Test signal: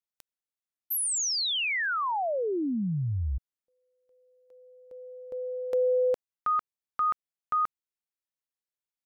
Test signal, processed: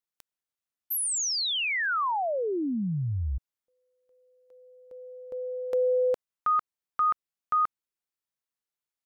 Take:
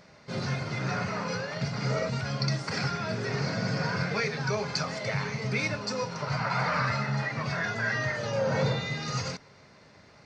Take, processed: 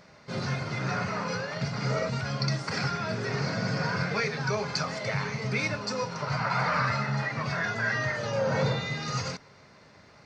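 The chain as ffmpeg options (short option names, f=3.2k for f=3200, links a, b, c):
-af "equalizer=f=1.2k:w=1.5:g=2"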